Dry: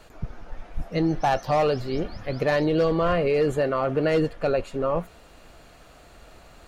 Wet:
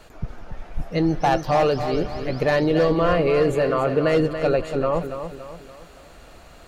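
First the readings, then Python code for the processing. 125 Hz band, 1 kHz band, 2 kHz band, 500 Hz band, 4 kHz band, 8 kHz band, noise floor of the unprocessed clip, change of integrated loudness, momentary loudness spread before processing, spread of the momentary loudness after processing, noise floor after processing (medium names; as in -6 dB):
+3.0 dB, +3.0 dB, +3.0 dB, +3.0 dB, +3.0 dB, no reading, -51 dBFS, +3.0 dB, 17 LU, 18 LU, -47 dBFS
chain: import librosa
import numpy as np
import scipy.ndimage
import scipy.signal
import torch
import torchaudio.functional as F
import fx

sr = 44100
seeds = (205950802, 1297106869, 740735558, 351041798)

y = fx.echo_feedback(x, sr, ms=283, feedback_pct=44, wet_db=-9)
y = F.gain(torch.from_numpy(y), 2.5).numpy()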